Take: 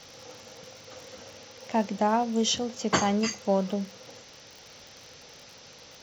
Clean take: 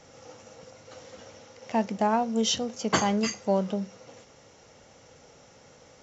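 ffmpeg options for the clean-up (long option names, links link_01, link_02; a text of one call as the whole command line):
ffmpeg -i in.wav -af "adeclick=threshold=4,afftdn=noise_reduction=6:noise_floor=-50" out.wav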